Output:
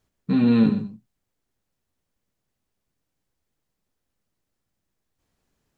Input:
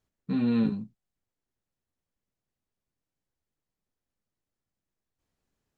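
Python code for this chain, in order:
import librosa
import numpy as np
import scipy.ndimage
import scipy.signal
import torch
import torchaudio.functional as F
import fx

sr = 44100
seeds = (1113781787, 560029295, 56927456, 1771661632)

y = x + 10.0 ** (-12.5 / 20.0) * np.pad(x, (int(125 * sr / 1000.0), 0))[:len(x)]
y = y * librosa.db_to_amplitude(7.5)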